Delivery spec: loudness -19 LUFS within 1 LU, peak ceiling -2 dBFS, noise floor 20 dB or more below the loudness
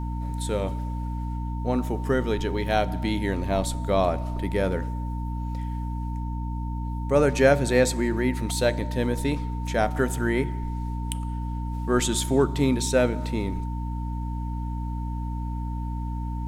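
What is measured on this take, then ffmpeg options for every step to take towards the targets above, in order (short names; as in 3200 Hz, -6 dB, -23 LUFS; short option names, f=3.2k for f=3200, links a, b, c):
hum 60 Hz; harmonics up to 300 Hz; hum level -27 dBFS; steady tone 910 Hz; tone level -39 dBFS; loudness -26.5 LUFS; peak -5.0 dBFS; loudness target -19.0 LUFS
-> -af "bandreject=f=60:t=h:w=4,bandreject=f=120:t=h:w=4,bandreject=f=180:t=h:w=4,bandreject=f=240:t=h:w=4,bandreject=f=300:t=h:w=4"
-af "bandreject=f=910:w=30"
-af "volume=7.5dB,alimiter=limit=-2dB:level=0:latency=1"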